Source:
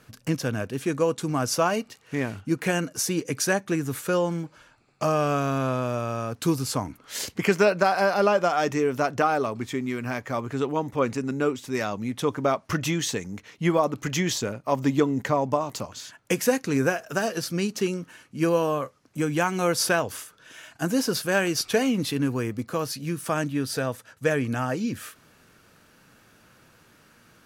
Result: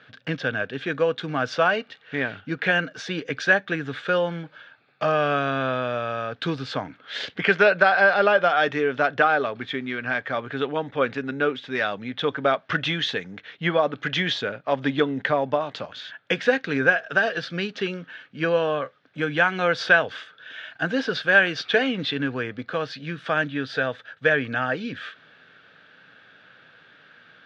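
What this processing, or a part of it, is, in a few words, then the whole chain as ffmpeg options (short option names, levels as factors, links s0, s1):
kitchen radio: -af "highpass=190,equalizer=f=220:t=q:w=4:g=-7,equalizer=f=340:t=q:w=4:g=-8,equalizer=f=1000:t=q:w=4:g=-7,equalizer=f=1600:t=q:w=4:g=9,equalizer=f=3500:t=q:w=4:g=9,lowpass=f=3700:w=0.5412,lowpass=f=3700:w=1.3066,volume=1.41"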